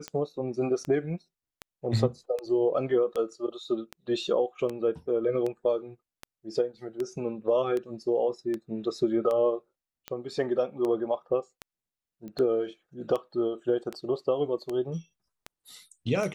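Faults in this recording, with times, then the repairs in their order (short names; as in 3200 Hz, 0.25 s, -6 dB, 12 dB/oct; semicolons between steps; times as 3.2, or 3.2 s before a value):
tick 78 rpm -20 dBFS
12.28 pop -30 dBFS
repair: de-click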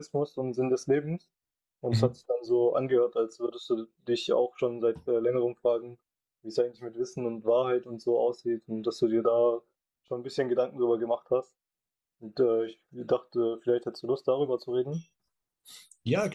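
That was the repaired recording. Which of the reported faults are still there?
12.28 pop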